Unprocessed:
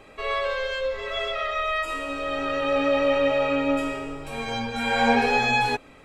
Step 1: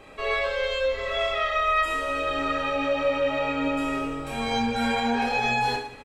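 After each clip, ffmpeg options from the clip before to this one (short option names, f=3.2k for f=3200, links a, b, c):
-filter_complex "[0:a]alimiter=limit=-18dB:level=0:latency=1:release=173,asplit=2[a][b];[b]aecho=0:1:30|69|119.7|185.6|271.3:0.631|0.398|0.251|0.158|0.1[c];[a][c]amix=inputs=2:normalize=0"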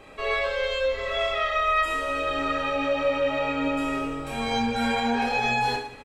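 -af anull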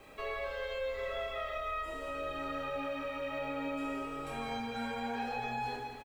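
-filter_complex "[0:a]acrossover=split=370|1000|2100[a][b][c][d];[a]acompressor=threshold=-38dB:ratio=4[e];[b]acompressor=threshold=-34dB:ratio=4[f];[c]acompressor=threshold=-38dB:ratio=4[g];[d]acompressor=threshold=-45dB:ratio=4[h];[e][f][g][h]amix=inputs=4:normalize=0,aecho=1:1:169|338|507|676|845|1014:0.335|0.174|0.0906|0.0471|0.0245|0.0127,acrusher=bits=9:mix=0:aa=0.000001,volume=-7dB"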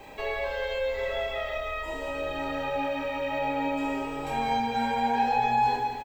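-af "superequalizer=9b=2.24:10b=0.447:16b=0.398,volume=7.5dB"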